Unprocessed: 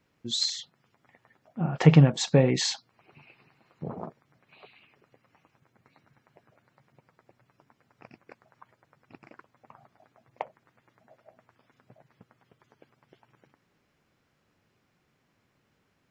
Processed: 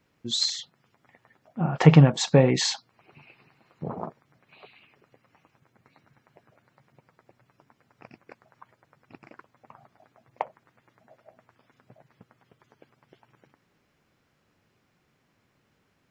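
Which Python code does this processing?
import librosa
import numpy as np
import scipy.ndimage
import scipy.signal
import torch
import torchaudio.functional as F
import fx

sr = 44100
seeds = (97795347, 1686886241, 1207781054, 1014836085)

y = fx.dynamic_eq(x, sr, hz=1000.0, q=1.2, threshold_db=-49.0, ratio=4.0, max_db=4)
y = y * librosa.db_to_amplitude(2.0)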